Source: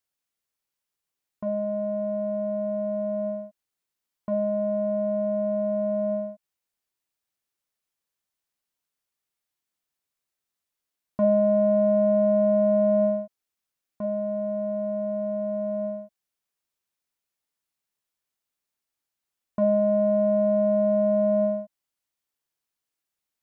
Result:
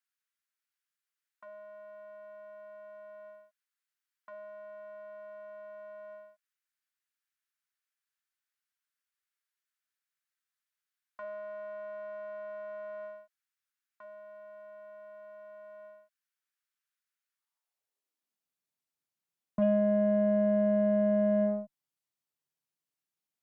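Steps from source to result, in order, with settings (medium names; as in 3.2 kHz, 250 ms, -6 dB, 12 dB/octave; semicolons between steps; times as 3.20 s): high-pass sweep 1.5 kHz -> 140 Hz, 17.29–18.49 s; Chebyshev shaper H 6 -30 dB, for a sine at -11 dBFS; trim -6.5 dB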